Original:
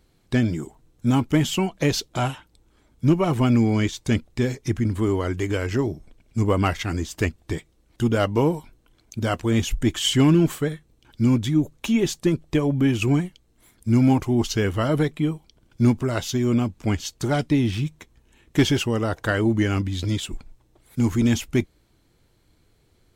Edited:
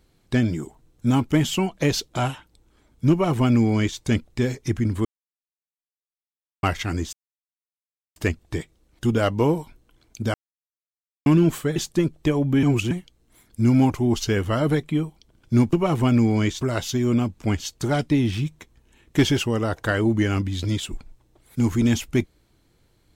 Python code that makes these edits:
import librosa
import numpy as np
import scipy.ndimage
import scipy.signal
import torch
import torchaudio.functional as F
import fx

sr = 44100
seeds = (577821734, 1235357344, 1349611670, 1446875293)

y = fx.edit(x, sr, fx.duplicate(start_s=3.11, length_s=0.88, to_s=16.01),
    fx.silence(start_s=5.05, length_s=1.58),
    fx.insert_silence(at_s=7.13, length_s=1.03),
    fx.silence(start_s=9.31, length_s=0.92),
    fx.cut(start_s=10.73, length_s=1.31),
    fx.reverse_span(start_s=12.91, length_s=0.28), tone=tone)